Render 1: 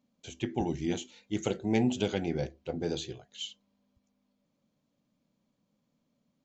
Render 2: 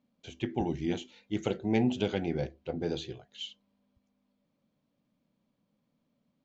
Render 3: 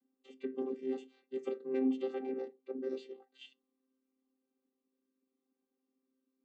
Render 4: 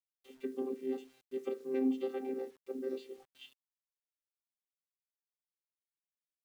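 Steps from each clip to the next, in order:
low-pass 4.3 kHz 12 dB/octave
vocoder on a held chord bare fifth, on C4; trim -4.5 dB
bit crusher 11-bit

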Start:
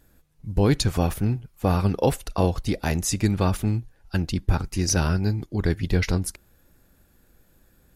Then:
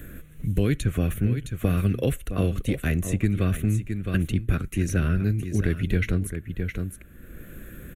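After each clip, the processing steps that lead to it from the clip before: static phaser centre 2.1 kHz, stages 4; delay 663 ms -12.5 dB; three bands compressed up and down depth 70%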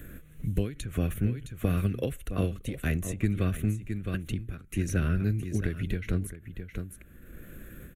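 endings held to a fixed fall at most 130 dB/s; trim -3.5 dB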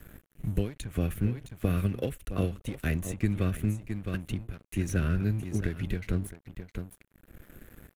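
crossover distortion -47 dBFS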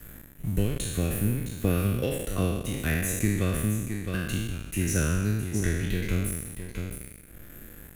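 spectral sustain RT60 1.22 s; treble shelf 4.7 kHz +8.5 dB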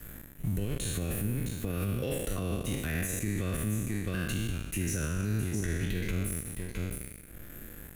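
peak limiter -22.5 dBFS, peak gain reduction 11.5 dB

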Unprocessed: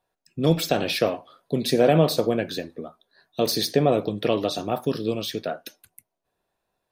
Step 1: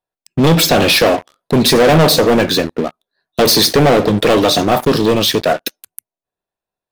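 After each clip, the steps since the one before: waveshaping leveller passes 5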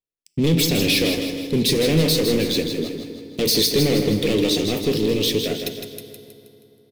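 high-order bell 1 kHz -15 dB; feedback delay 159 ms, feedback 49%, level -7 dB; FDN reverb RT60 3.4 s, high-frequency decay 0.65×, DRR 12 dB; trim -7.5 dB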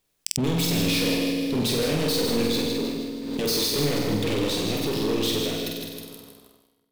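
waveshaping leveller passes 3; flutter echo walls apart 8.1 m, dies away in 0.76 s; swell ahead of each attack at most 40 dB/s; trim -14.5 dB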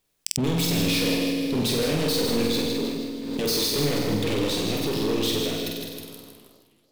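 modulated delay 320 ms, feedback 43%, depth 153 cents, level -21 dB

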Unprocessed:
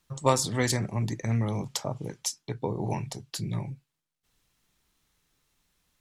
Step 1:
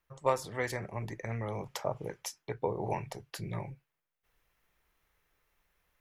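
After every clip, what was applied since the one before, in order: gain riding within 3 dB 0.5 s; ten-band graphic EQ 125 Hz -6 dB, 250 Hz -9 dB, 500 Hz +4 dB, 2 kHz +4 dB, 4 kHz -8 dB, 8 kHz -11 dB; trim -3 dB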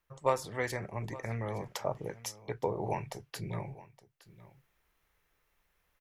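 delay 867 ms -18.5 dB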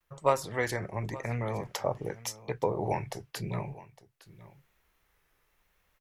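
vibrato 0.9 Hz 66 cents; trim +3.5 dB

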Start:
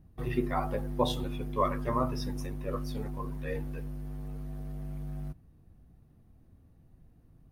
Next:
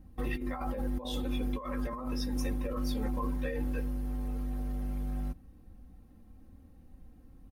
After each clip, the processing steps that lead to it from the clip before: comb 3.8 ms, depth 86%; compressor with a negative ratio -33 dBFS, ratio -1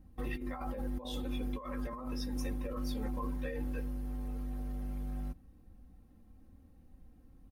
short-mantissa float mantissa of 8-bit; trim -4 dB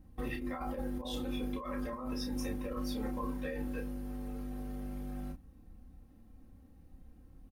doubling 31 ms -5.5 dB; trim +1 dB

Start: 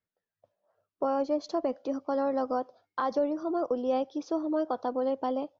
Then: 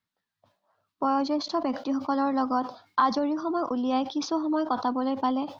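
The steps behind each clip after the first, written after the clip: graphic EQ 125/250/500/1000/2000/4000 Hz +4/+8/-9/+10/+3/+10 dB; decay stretcher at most 140 dB/s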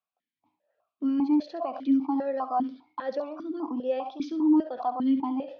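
in parallel at +1.5 dB: peak limiter -17.5 dBFS, peak gain reduction 7 dB; on the sum: flutter echo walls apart 11.7 m, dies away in 0.33 s; stepped vowel filter 5 Hz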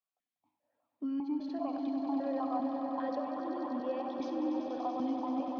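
compression, threshold -26 dBFS, peak gain reduction 9 dB; echo with a slow build-up 96 ms, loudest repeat 5, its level -9 dB; trim -6.5 dB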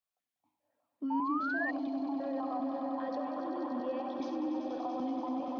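chunks repeated in reverse 143 ms, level -11 dB; peak limiter -27.5 dBFS, peak gain reduction 5 dB; painted sound rise, 1.10–1.71 s, 870–1900 Hz -35 dBFS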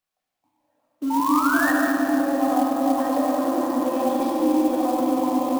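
in parallel at -8 dB: bit crusher 8-bit; on the sum: simulated room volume 150 m³, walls hard, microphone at 0.51 m; sampling jitter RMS 0.027 ms; trim +6.5 dB

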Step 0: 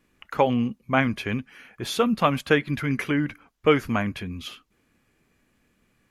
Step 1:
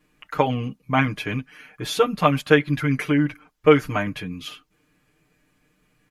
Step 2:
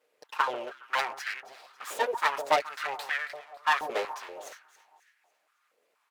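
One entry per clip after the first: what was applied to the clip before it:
comb 6.6 ms, depth 99%; trim -1 dB
full-wave rectifier; echo whose repeats swap between lows and highs 138 ms, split 1.2 kHz, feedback 62%, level -12 dB; step-sequenced high-pass 4.2 Hz 490–1700 Hz; trim -7 dB

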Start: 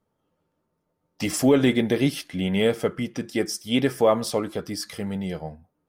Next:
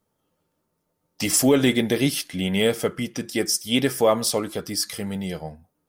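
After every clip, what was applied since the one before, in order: treble shelf 3.9 kHz +11 dB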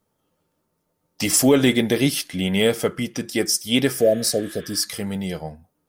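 spectral replace 4.00–4.78 s, 750–3700 Hz; trim +2 dB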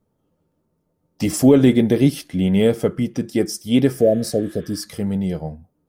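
tilt shelf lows +7.5 dB, about 770 Hz; trim -1 dB

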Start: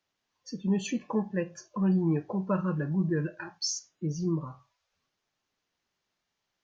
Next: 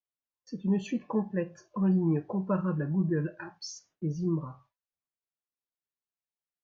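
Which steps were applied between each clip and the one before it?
gate with hold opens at -48 dBFS; low-pass 1.8 kHz 6 dB/octave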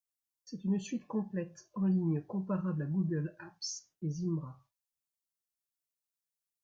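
tone controls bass +5 dB, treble +13 dB; trim -8 dB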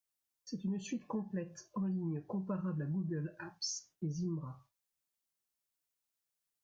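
compression 6:1, threshold -37 dBFS, peak gain reduction 10.5 dB; trim +2.5 dB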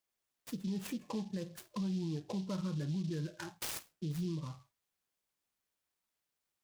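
peak limiter -32.5 dBFS, peak gain reduction 5 dB; delay time shaken by noise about 4 kHz, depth 0.061 ms; trim +2 dB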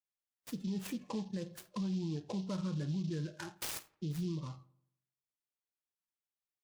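spectral noise reduction 14 dB; filtered feedback delay 85 ms, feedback 47%, low-pass 2.5 kHz, level -20.5 dB

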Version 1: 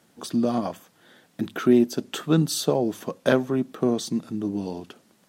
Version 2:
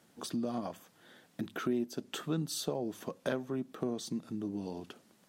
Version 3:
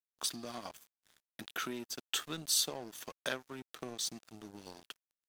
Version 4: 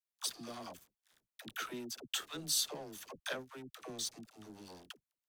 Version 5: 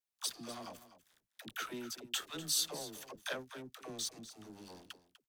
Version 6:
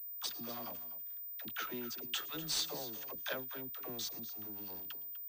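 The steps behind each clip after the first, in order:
compression 2:1, threshold -33 dBFS, peak gain reduction 11.5 dB; trim -4.5 dB
tilt shelf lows -10 dB; crossover distortion -48 dBFS
phase dispersion lows, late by 79 ms, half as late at 460 Hz; trim -2.5 dB
delay 247 ms -14.5 dB
feedback echo behind a high-pass 112 ms, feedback 44%, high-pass 4.8 kHz, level -17.5 dB; class-D stage that switches slowly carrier 15 kHz

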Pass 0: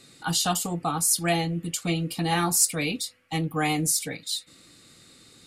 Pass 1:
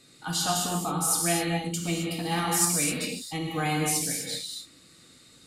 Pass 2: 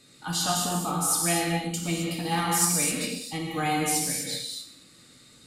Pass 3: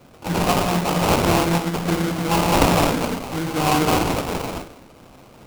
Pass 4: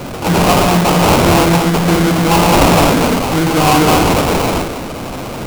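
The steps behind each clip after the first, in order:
gated-style reverb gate 290 ms flat, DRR -1 dB; trim -5 dB
gated-style reverb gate 270 ms falling, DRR 6.5 dB
sample-rate reducer 1.8 kHz, jitter 20%; trim +7.5 dB
power-law waveshaper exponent 0.5; trim +2 dB

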